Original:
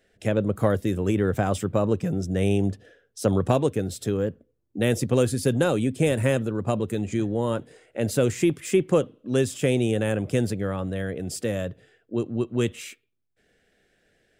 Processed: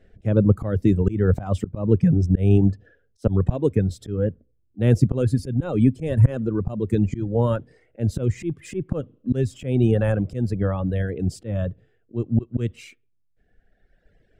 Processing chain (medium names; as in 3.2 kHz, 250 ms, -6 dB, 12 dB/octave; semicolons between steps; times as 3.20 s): reverb removal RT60 1.8 s; slow attack 218 ms; RIAA curve playback; trim +3 dB